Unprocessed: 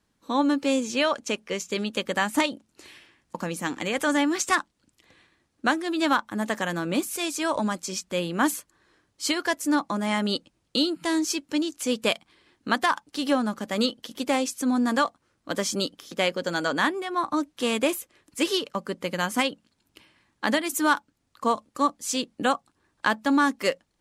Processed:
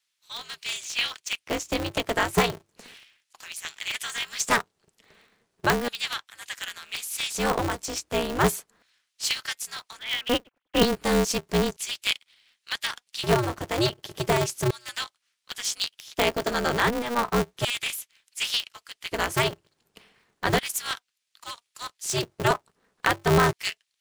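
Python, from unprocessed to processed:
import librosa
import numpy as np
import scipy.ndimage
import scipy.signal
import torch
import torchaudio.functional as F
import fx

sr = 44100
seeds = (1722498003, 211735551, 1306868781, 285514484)

y = fx.sine_speech(x, sr, at=(9.99, 10.83))
y = fx.filter_lfo_highpass(y, sr, shape='square', hz=0.34, low_hz=290.0, high_hz=2700.0, q=1.3)
y = y * np.sign(np.sin(2.0 * np.pi * 120.0 * np.arange(len(y)) / sr))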